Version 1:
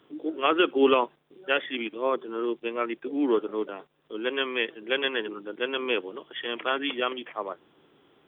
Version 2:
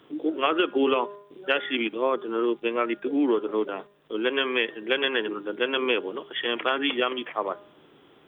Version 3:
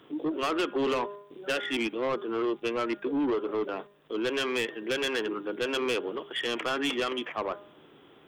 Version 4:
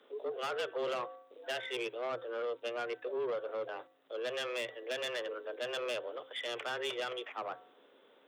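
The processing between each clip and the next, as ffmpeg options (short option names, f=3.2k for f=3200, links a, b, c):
-af "bandreject=f=203.4:t=h:w=4,bandreject=f=406.8:t=h:w=4,bandreject=f=610.2:t=h:w=4,bandreject=f=813.6:t=h:w=4,bandreject=f=1.017k:t=h:w=4,bandreject=f=1.2204k:t=h:w=4,bandreject=f=1.4238k:t=h:w=4,bandreject=f=1.6272k:t=h:w=4,bandreject=f=1.8306k:t=h:w=4,acompressor=threshold=-25dB:ratio=5,volume=5.5dB"
-af "asoftclip=type=tanh:threshold=-23.5dB"
-af "afreqshift=120,volume=-8dB"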